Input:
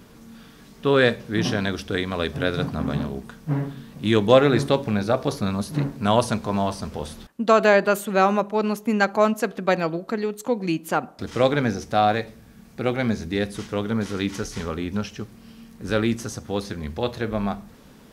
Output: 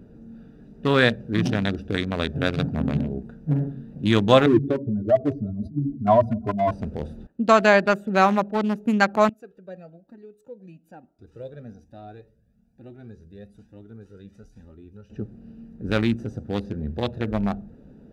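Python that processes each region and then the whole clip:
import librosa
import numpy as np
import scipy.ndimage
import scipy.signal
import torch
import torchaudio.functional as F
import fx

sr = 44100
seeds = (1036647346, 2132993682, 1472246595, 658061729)

y = fx.chain(x, sr, fx.spec_expand(power=2.4),
    fx.comb(ms=2.9, depth=0.94),
    fx.echo_feedback(ms=174, feedback_pct=42, wet_db=-22.5), at=(4.46, 6.71))
y = fx.chain(y, sr, fx.pre_emphasis(coefficient=0.8),
    fx.comb_cascade(direction='rising', hz=1.1), at=(9.29, 15.1))
y = fx.wiener(y, sr, points=41)
y = fx.dynamic_eq(y, sr, hz=440.0, q=1.8, threshold_db=-32.0, ratio=4.0, max_db=-6)
y = F.gain(torch.from_numpy(y), 2.5).numpy()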